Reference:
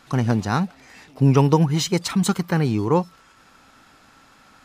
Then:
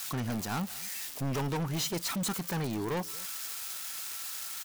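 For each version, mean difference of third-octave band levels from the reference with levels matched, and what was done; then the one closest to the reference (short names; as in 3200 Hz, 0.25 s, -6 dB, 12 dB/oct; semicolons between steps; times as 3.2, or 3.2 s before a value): 12.5 dB: switching spikes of -11 dBFS; low shelf 190 Hz -9 dB; overloaded stage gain 24.5 dB; on a send: echo 0.228 s -22 dB; on the sum: gain -5 dB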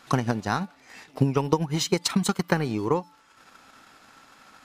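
3.5 dB: low shelf 170 Hz -9.5 dB; de-hum 290 Hz, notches 15; compressor 3:1, threshold -24 dBFS, peak gain reduction 8.5 dB; transient shaper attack +7 dB, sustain -6 dB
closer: second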